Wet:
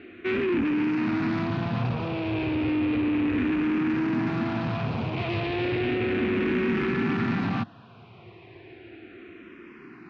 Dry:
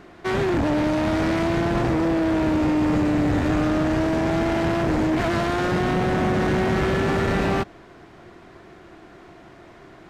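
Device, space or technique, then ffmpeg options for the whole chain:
barber-pole phaser into a guitar amplifier: -filter_complex "[0:a]asplit=2[a][b];[b]afreqshift=-0.33[c];[a][c]amix=inputs=2:normalize=1,asoftclip=type=tanh:threshold=-24.5dB,highpass=94,equalizer=f=110:t=q:w=4:g=9,equalizer=f=240:t=q:w=4:g=8,equalizer=f=350:t=q:w=4:g=3,equalizer=f=600:t=q:w=4:g=-8,equalizer=f=860:t=q:w=4:g=-3,equalizer=f=2.5k:t=q:w=4:g=10,lowpass=f=4.2k:w=0.5412,lowpass=f=4.2k:w=1.3066"

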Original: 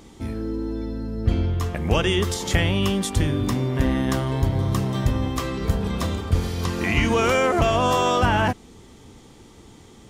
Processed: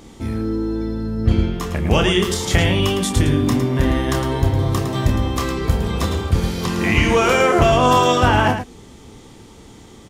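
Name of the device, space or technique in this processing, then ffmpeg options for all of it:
slapback doubling: -filter_complex "[0:a]asplit=3[a][b][c];[b]adelay=28,volume=-6.5dB[d];[c]adelay=109,volume=-8dB[e];[a][d][e]amix=inputs=3:normalize=0,volume=3.5dB"

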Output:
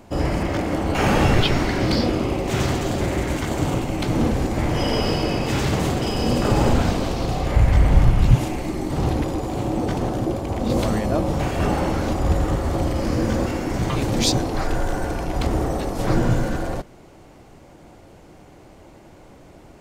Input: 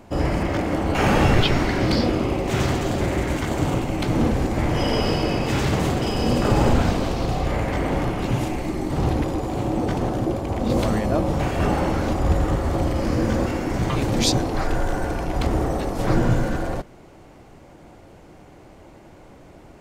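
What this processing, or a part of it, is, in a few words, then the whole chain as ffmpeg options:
exciter from parts: -filter_complex "[0:a]asplit=3[a][b][c];[a]afade=t=out:st=7.55:d=0.02[d];[b]asubboost=boost=11:cutoff=120,afade=t=in:st=7.55:d=0.02,afade=t=out:st=8.34:d=0.02[e];[c]afade=t=in:st=8.34:d=0.02[f];[d][e][f]amix=inputs=3:normalize=0,asplit=2[g][h];[h]highpass=2.6k,asoftclip=type=tanh:threshold=-30dB,volume=-9dB[i];[g][i]amix=inputs=2:normalize=0"

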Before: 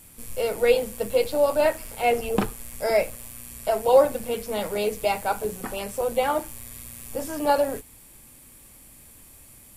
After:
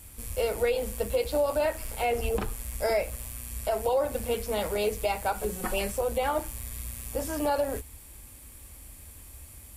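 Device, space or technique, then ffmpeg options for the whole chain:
car stereo with a boomy subwoofer: -filter_complex "[0:a]highpass=f=69:p=1,lowshelf=f=100:t=q:w=1.5:g=12.5,alimiter=limit=-17.5dB:level=0:latency=1:release=165,asettb=1/sr,asplit=3[a][b][c];[a]atrim=end=5.344[d];[b]atrim=start=5.34:end=5.92,asetpts=PTS-STARTPTS,afade=t=in:d=0.004:c=qsin,afade=t=out:st=0.576:d=0.004:c=qsin,aecho=1:1:5.5:0.73,atrim=end_sample=25578[e];[c]atrim=start=5.916[f];[d][e]acrossfade=d=0.004:c1=hsin:c2=qsin[g];[g][f]acrossfade=d=0.004:c1=qsin:c2=hsin"

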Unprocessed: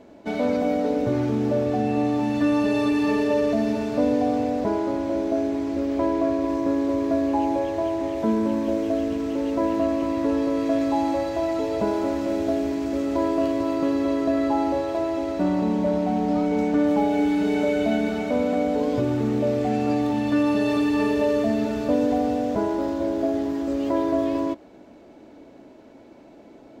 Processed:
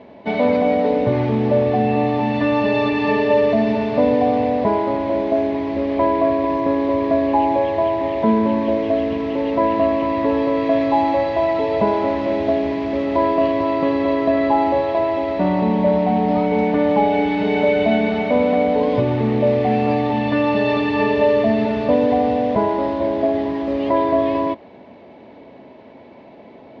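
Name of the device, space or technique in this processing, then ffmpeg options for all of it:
guitar cabinet: -af "highpass=79,equalizer=f=310:t=q:w=4:g=-9,equalizer=f=980:t=q:w=4:g=4,equalizer=f=1.4k:t=q:w=4:g=-8,equalizer=f=2k:t=q:w=4:g=4,lowpass=f=3.9k:w=0.5412,lowpass=f=3.9k:w=1.3066,volume=7.5dB"

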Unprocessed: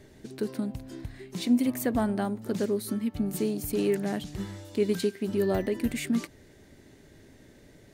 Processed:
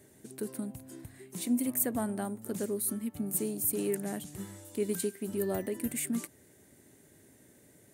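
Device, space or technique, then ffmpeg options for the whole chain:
budget condenser microphone: -af "highpass=98,highshelf=f=6.7k:t=q:w=1.5:g=12,volume=-6dB"

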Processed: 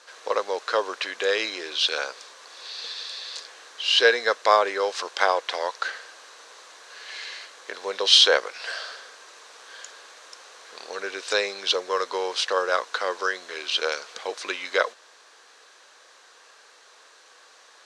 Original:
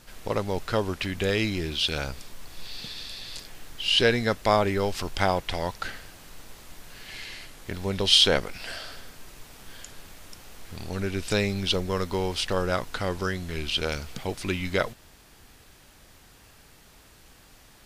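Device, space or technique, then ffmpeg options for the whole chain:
phone speaker on a table: -af "highpass=f=430:w=0.5412,highpass=f=430:w=1.3066,equalizer=f=490:t=q:w=4:g=6,equalizer=f=1.1k:t=q:w=4:g=8,equalizer=f=1.6k:t=q:w=4:g=7,equalizer=f=4k:t=q:w=4:g=6,equalizer=f=6.1k:t=q:w=4:g=5,lowpass=f=8.5k:w=0.5412,lowpass=f=8.5k:w=1.3066"

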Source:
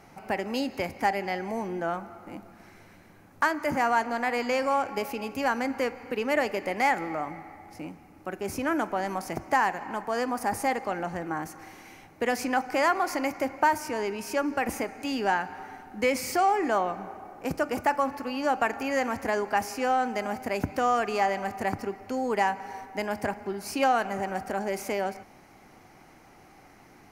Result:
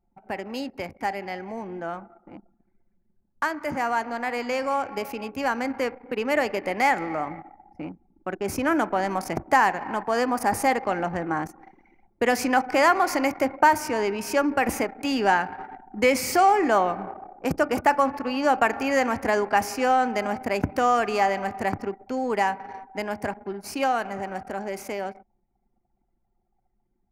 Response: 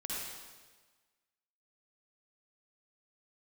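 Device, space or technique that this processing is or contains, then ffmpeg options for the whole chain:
voice memo with heavy noise removal: -af "anlmdn=0.398,dynaudnorm=f=730:g=17:m=8.5dB,volume=-2.5dB"

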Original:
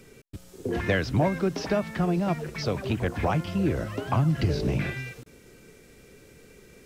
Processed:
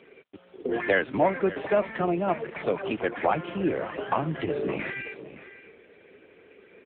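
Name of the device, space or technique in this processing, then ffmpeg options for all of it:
satellite phone: -af "highpass=340,lowpass=3.4k,aecho=1:1:567:0.188,volume=5dB" -ar 8000 -c:a libopencore_amrnb -b:a 6700

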